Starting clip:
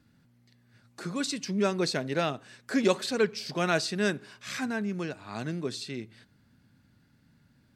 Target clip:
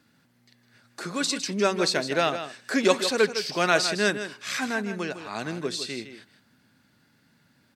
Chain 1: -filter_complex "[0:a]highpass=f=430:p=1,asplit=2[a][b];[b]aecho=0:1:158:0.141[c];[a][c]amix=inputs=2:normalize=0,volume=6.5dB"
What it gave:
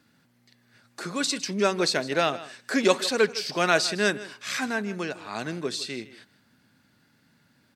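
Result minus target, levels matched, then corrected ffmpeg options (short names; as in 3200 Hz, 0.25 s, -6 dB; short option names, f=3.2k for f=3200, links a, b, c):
echo-to-direct -6.5 dB
-filter_complex "[0:a]highpass=f=430:p=1,asplit=2[a][b];[b]aecho=0:1:158:0.299[c];[a][c]amix=inputs=2:normalize=0,volume=6.5dB"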